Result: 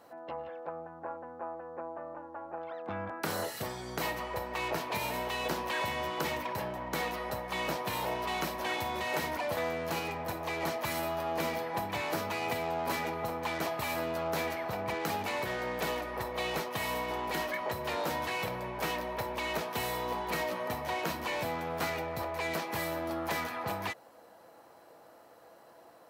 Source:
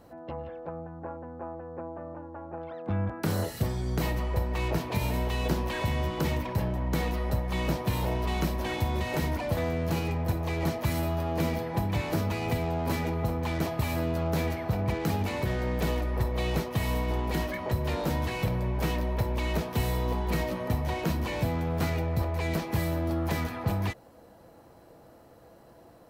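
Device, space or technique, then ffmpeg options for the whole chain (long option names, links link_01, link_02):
filter by subtraction: -filter_complex "[0:a]asplit=2[link_01][link_02];[link_02]lowpass=1000,volume=-1[link_03];[link_01][link_03]amix=inputs=2:normalize=0"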